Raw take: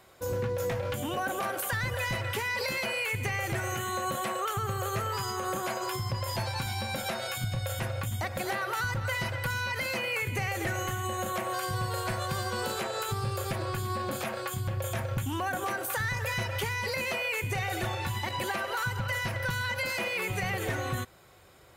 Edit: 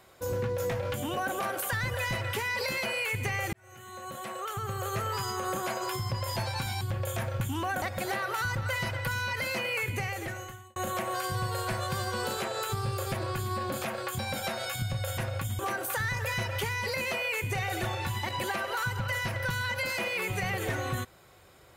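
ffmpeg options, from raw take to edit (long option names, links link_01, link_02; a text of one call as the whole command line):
ffmpeg -i in.wav -filter_complex "[0:a]asplit=7[link_01][link_02][link_03][link_04][link_05][link_06][link_07];[link_01]atrim=end=3.53,asetpts=PTS-STARTPTS,afade=type=out:start_time=3.526:duration=0.004:curve=hsin[link_08];[link_02]atrim=start=3.53:end=6.812,asetpts=PTS-STARTPTS,afade=type=in:duration=1.56[link_09];[link_03]atrim=start=14.578:end=15.592[link_10];[link_04]atrim=start=8.208:end=11.15,asetpts=PTS-STARTPTS,afade=type=out:start_time=2.062:duration=0.88[link_11];[link_05]atrim=start=11.15:end=14.582,asetpts=PTS-STARTPTS,afade=type=in:duration=0.004:curve=hsin[link_12];[link_06]atrim=start=6.808:end=8.212[link_13];[link_07]atrim=start=15.588[link_14];[link_08][link_09]concat=n=2:v=0:a=1[link_15];[link_15][link_10]acrossfade=duration=0.004:curve1=hsin:curve2=hsin[link_16];[link_11][link_12]concat=n=2:v=0:a=1[link_17];[link_16][link_17]acrossfade=duration=0.004:curve1=hsin:curve2=hsin[link_18];[link_18][link_13]acrossfade=duration=0.004:curve1=hsin:curve2=hsin[link_19];[link_19][link_14]acrossfade=duration=0.004:curve1=hsin:curve2=hsin" out.wav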